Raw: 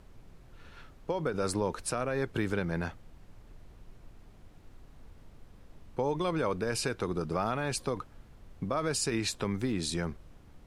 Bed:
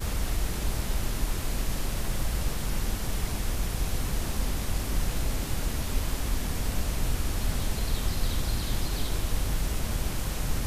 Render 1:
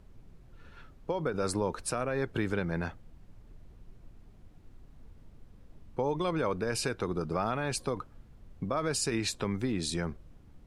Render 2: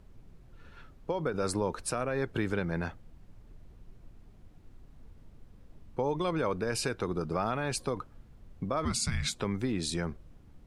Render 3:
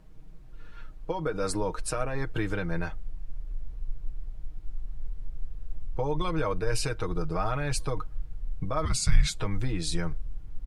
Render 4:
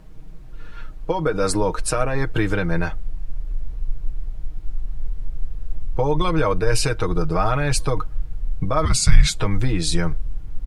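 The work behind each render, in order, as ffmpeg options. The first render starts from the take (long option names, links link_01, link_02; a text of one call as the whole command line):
ffmpeg -i in.wav -af "afftdn=noise_reduction=6:noise_floor=-55" out.wav
ffmpeg -i in.wav -filter_complex "[0:a]asplit=3[link_01][link_02][link_03];[link_01]afade=type=out:start_time=8.84:duration=0.02[link_04];[link_02]afreqshift=-250,afade=type=in:start_time=8.84:duration=0.02,afade=type=out:start_time=9.34:duration=0.02[link_05];[link_03]afade=type=in:start_time=9.34:duration=0.02[link_06];[link_04][link_05][link_06]amix=inputs=3:normalize=0" out.wav
ffmpeg -i in.wav -af "asubboost=boost=9.5:cutoff=68,aecho=1:1:6.4:0.65" out.wav
ffmpeg -i in.wav -af "volume=9dB,alimiter=limit=-1dB:level=0:latency=1" out.wav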